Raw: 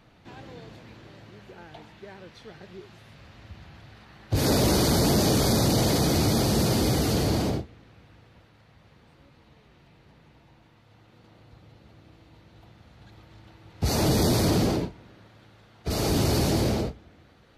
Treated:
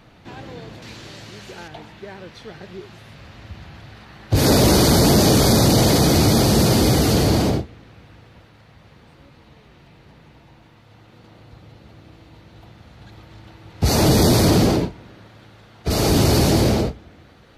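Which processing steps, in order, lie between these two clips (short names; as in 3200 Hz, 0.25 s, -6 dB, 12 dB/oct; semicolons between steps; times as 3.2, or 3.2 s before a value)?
0.82–1.68 bell 7400 Hz +13.5 dB 2.4 oct; gain +7.5 dB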